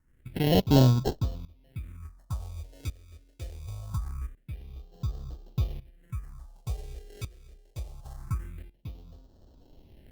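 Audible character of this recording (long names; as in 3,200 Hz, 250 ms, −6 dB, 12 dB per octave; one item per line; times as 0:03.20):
aliases and images of a low sample rate 1,200 Hz, jitter 0%
phaser sweep stages 4, 0.24 Hz, lowest notch 160–2,100 Hz
tremolo saw up 0.69 Hz, depth 85%
Opus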